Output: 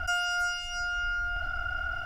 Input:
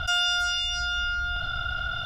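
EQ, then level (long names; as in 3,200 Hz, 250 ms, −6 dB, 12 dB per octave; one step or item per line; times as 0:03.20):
mains-hum notches 60/120/180/240/300/360/420 Hz
phaser with its sweep stopped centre 730 Hz, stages 8
0.0 dB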